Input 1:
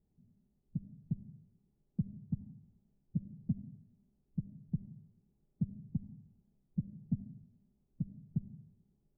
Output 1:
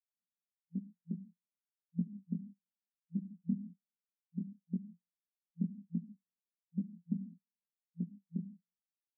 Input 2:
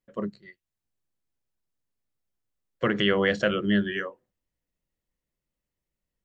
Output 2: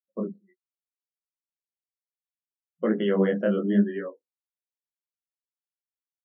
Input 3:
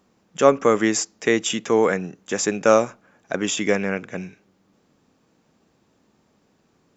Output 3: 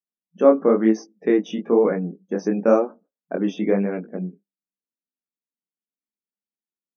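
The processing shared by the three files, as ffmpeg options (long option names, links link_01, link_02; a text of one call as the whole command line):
ffmpeg -i in.wav -af "agate=range=-13dB:threshold=-47dB:ratio=16:detection=peak,flanger=delay=17.5:depth=7.8:speed=1,afftfilt=real='re*between(b*sr/4096,170,6400)':imag='im*between(b*sr/4096,170,6400)':win_size=4096:overlap=0.75,tiltshelf=frequency=970:gain=9.5,afftdn=noise_reduction=32:noise_floor=-41,volume=-2dB" out.wav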